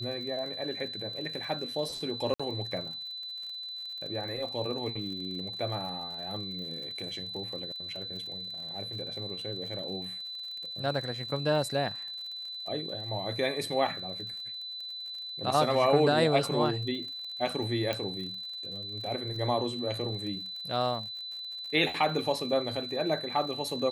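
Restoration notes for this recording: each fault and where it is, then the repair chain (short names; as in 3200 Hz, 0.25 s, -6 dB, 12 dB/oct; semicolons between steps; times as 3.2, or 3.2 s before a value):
crackle 55/s -40 dBFS
tone 4000 Hz -37 dBFS
2.34–2.4 gap 55 ms
17.93 pop -17 dBFS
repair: de-click; notch 4000 Hz, Q 30; interpolate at 2.34, 55 ms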